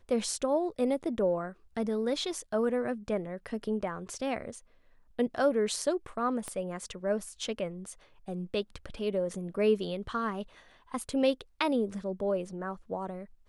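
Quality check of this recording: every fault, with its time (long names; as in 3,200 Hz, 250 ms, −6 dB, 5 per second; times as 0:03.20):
0:06.48: click −23 dBFS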